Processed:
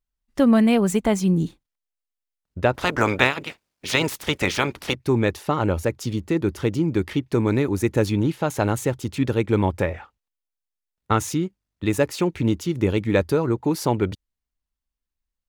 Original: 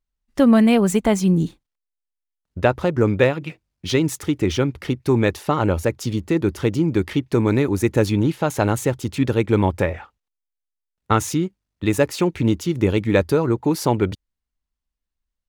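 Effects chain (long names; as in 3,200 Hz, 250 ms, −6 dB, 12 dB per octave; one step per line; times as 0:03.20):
0:02.73–0:04.94: ceiling on every frequency bin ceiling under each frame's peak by 23 dB
level −2.5 dB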